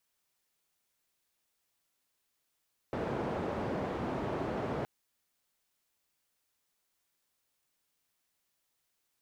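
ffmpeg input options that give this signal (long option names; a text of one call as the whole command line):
ffmpeg -f lavfi -i "anoisesrc=color=white:duration=1.92:sample_rate=44100:seed=1,highpass=frequency=81,lowpass=frequency=620,volume=-14.6dB" out.wav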